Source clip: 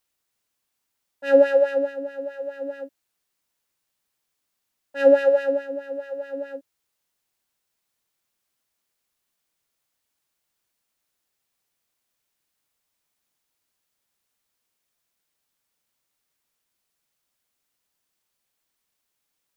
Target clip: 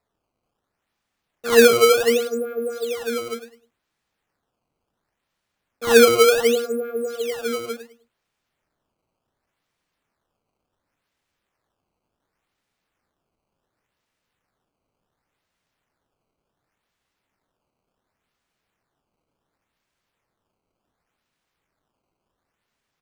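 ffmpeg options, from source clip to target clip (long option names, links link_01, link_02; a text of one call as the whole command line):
ffmpeg -i in.wav -filter_complex "[0:a]bass=frequency=250:gain=4,treble=frequency=4000:gain=-9,asplit=2[link_01][link_02];[link_02]alimiter=limit=-15.5dB:level=0:latency=1:release=194,volume=-2.5dB[link_03];[link_01][link_03]amix=inputs=2:normalize=0,asetrate=37485,aresample=44100,aecho=1:1:103|206|309:0.282|0.0761|0.0205,acrusher=samples=14:mix=1:aa=0.000001:lfo=1:lforange=22.4:lforate=0.69" out.wav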